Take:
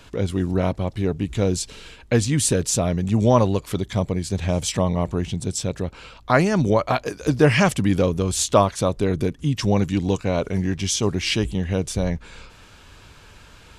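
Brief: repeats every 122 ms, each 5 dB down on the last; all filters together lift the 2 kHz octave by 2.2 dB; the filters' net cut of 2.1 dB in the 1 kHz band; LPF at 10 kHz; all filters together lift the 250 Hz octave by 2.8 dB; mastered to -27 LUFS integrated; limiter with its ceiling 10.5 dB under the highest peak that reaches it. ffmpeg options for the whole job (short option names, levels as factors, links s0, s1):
-af "lowpass=10000,equalizer=f=250:t=o:g=4,equalizer=f=1000:t=o:g=-4,equalizer=f=2000:t=o:g=4,alimiter=limit=0.266:level=0:latency=1,aecho=1:1:122|244|366|488|610|732|854:0.562|0.315|0.176|0.0988|0.0553|0.031|0.0173,volume=0.531"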